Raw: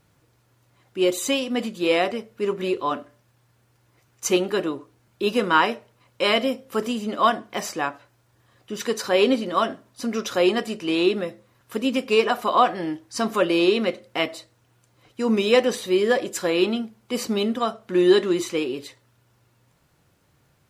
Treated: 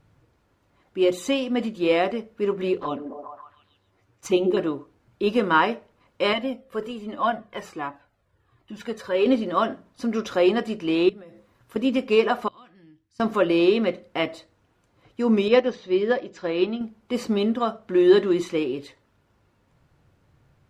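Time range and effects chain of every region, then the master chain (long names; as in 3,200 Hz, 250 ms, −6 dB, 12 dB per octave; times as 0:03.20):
0:02.78–0:04.57: flanger swept by the level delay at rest 11.1 ms, full sweep at −20.5 dBFS + echo through a band-pass that steps 137 ms, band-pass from 320 Hz, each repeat 0.7 octaves, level −2.5 dB
0:06.33–0:09.26: parametric band 5,700 Hz −5 dB 0.64 octaves + flanger whose copies keep moving one way falling 1.3 Hz
0:11.09–0:11.76: high-shelf EQ 6,900 Hz +7 dB + downward compressor 16 to 1, threshold −40 dBFS
0:12.48–0:13.20: guitar amp tone stack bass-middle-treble 6-0-2 + downward compressor 1.5 to 1, threshold −56 dBFS
0:15.48–0:16.81: Butterworth low-pass 6,300 Hz + expander for the loud parts, over −28 dBFS
whole clip: low-pass filter 2,400 Hz 6 dB per octave; low-shelf EQ 100 Hz +9.5 dB; mains-hum notches 60/120/180 Hz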